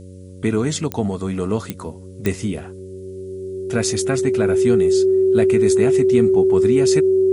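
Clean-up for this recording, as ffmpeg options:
ffmpeg -i in.wav -af "adeclick=threshold=4,bandreject=frequency=93:width_type=h:width=4,bandreject=frequency=186:width_type=h:width=4,bandreject=frequency=279:width_type=h:width=4,bandreject=frequency=372:width_type=h:width=4,bandreject=frequency=465:width_type=h:width=4,bandreject=frequency=558:width_type=h:width=4,bandreject=frequency=380:width=30,agate=range=-21dB:threshold=-28dB" out.wav

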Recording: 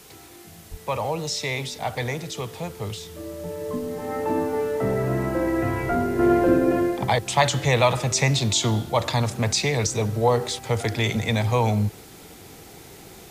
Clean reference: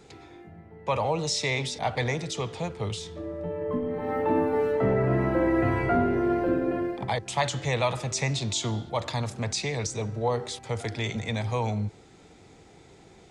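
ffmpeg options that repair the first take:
ffmpeg -i in.wav -filter_complex "[0:a]asplit=3[link_01][link_02][link_03];[link_01]afade=type=out:start_time=0.7:duration=0.02[link_04];[link_02]highpass=frequency=140:width=0.5412,highpass=frequency=140:width=1.3066,afade=type=in:start_time=0.7:duration=0.02,afade=type=out:start_time=0.82:duration=0.02[link_05];[link_03]afade=type=in:start_time=0.82:duration=0.02[link_06];[link_04][link_05][link_06]amix=inputs=3:normalize=0,asplit=3[link_07][link_08][link_09];[link_07]afade=type=out:start_time=5.88:duration=0.02[link_10];[link_08]highpass=frequency=140:width=0.5412,highpass=frequency=140:width=1.3066,afade=type=in:start_time=5.88:duration=0.02,afade=type=out:start_time=6:duration=0.02[link_11];[link_09]afade=type=in:start_time=6:duration=0.02[link_12];[link_10][link_11][link_12]amix=inputs=3:normalize=0,afwtdn=0.004,asetnsamples=nb_out_samples=441:pad=0,asendcmd='6.19 volume volume -7dB',volume=0dB" out.wav

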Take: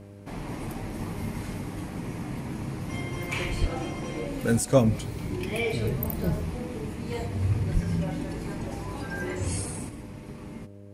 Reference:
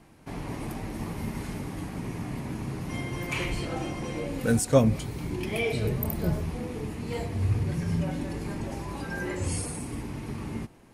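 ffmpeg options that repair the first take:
ffmpeg -i in.wav -filter_complex "[0:a]bandreject=frequency=100.5:width_type=h:width=4,bandreject=frequency=201:width_type=h:width=4,bandreject=frequency=301.5:width_type=h:width=4,bandreject=frequency=402:width_type=h:width=4,bandreject=frequency=502.5:width_type=h:width=4,bandreject=frequency=603:width_type=h:width=4,asplit=3[link_01][link_02][link_03];[link_01]afade=type=out:start_time=3.6:duration=0.02[link_04];[link_02]highpass=frequency=140:width=0.5412,highpass=frequency=140:width=1.3066,afade=type=in:start_time=3.6:duration=0.02,afade=type=out:start_time=3.72:duration=0.02[link_05];[link_03]afade=type=in:start_time=3.72:duration=0.02[link_06];[link_04][link_05][link_06]amix=inputs=3:normalize=0,asplit=3[link_07][link_08][link_09];[link_07]afade=type=out:start_time=7.73:duration=0.02[link_10];[link_08]highpass=frequency=140:width=0.5412,highpass=frequency=140:width=1.3066,afade=type=in:start_time=7.73:duration=0.02,afade=type=out:start_time=7.85:duration=0.02[link_11];[link_09]afade=type=in:start_time=7.85:duration=0.02[link_12];[link_10][link_11][link_12]amix=inputs=3:normalize=0,asetnsamples=nb_out_samples=441:pad=0,asendcmd='9.89 volume volume 6dB',volume=0dB" out.wav

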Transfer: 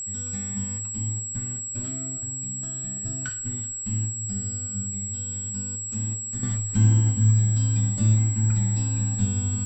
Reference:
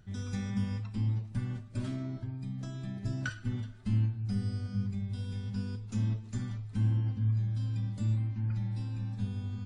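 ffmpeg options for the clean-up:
ffmpeg -i in.wav -af "bandreject=frequency=7700:width=30,asetnsamples=nb_out_samples=441:pad=0,asendcmd='6.43 volume volume -10dB',volume=0dB" out.wav

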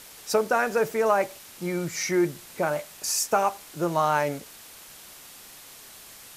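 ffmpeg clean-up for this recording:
ffmpeg -i in.wav -af "afwtdn=0.0056" out.wav

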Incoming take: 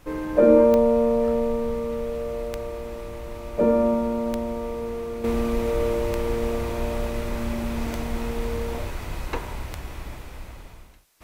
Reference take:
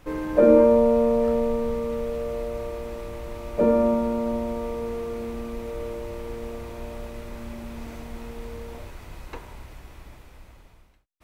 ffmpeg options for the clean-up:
ffmpeg -i in.wav -filter_complex "[0:a]adeclick=threshold=4,asplit=3[link_01][link_02][link_03];[link_01]afade=type=out:start_time=9.72:duration=0.02[link_04];[link_02]highpass=frequency=140:width=0.5412,highpass=frequency=140:width=1.3066,afade=type=in:start_time=9.72:duration=0.02,afade=type=out:start_time=9.84:duration=0.02[link_05];[link_03]afade=type=in:start_time=9.84:duration=0.02[link_06];[link_04][link_05][link_06]amix=inputs=3:normalize=0,agate=range=-21dB:threshold=-29dB,asetnsamples=nb_out_samples=441:pad=0,asendcmd='5.24 volume volume -9dB',volume=0dB" out.wav

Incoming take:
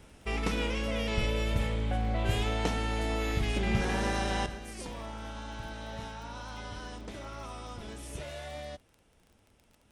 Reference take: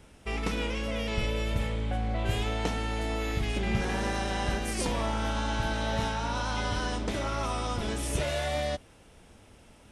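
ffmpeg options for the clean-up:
ffmpeg -i in.wav -af "adeclick=threshold=4,asetnsamples=nb_out_samples=441:pad=0,asendcmd='4.46 volume volume 11dB',volume=0dB" out.wav

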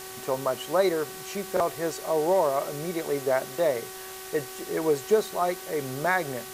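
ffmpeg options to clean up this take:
ffmpeg -i in.wav -af "bandreject=frequency=378:width_type=h:width=4,bandreject=frequency=756:width_type=h:width=4,bandreject=frequency=1134:width_type=h:width=4,bandreject=frequency=1512:width_type=h:width=4,bandreject=frequency=1890:width_type=h:width=4,afftdn=noise_reduction=30:noise_floor=-40" out.wav

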